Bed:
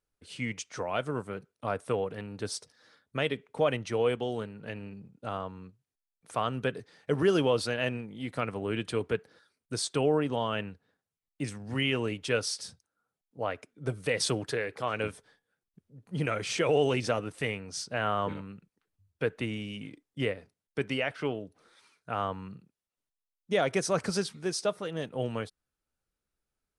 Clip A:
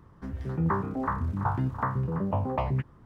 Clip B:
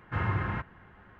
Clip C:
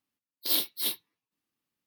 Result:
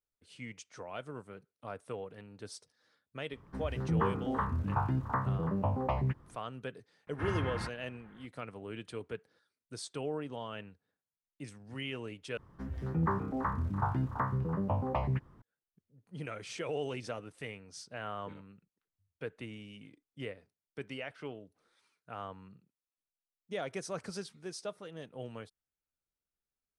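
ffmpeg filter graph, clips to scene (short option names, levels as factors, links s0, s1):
-filter_complex "[1:a]asplit=2[s0][s1];[0:a]volume=0.282,asplit=2[s2][s3];[s2]atrim=end=12.374[s4];[s1]atrim=end=3.05,asetpts=PTS-STARTPTS,volume=0.631[s5];[s3]atrim=start=15.416[s6];[s0]atrim=end=3.05,asetpts=PTS-STARTPTS,volume=0.668,afade=t=in:d=0.004:c=hsin,afade=t=out:st=3.046:d=0.004:c=hsin,adelay=3310[s7];[2:a]atrim=end=1.19,asetpts=PTS-STARTPTS,volume=0.531,afade=t=in:d=0.004:c=hsin,afade=t=out:st=1.186:d=0.004:c=hsin,adelay=7070[s8];[s4][s5]acrossfade=d=0.004:c1=hsin:c2=hsin[s9];[s9][s6]acrossfade=d=0.004:c1=hsin:c2=hsin[s10];[s10][s7][s8]amix=inputs=3:normalize=0"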